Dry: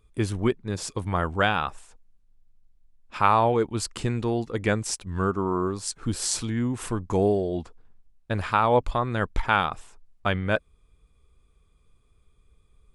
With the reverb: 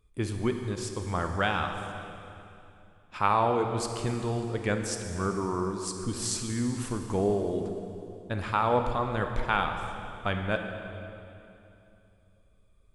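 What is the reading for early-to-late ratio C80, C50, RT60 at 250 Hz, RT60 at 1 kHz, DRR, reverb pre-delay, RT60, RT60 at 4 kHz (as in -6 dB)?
6.5 dB, 5.5 dB, 3.3 s, 2.7 s, 5.0 dB, 26 ms, 2.8 s, 2.5 s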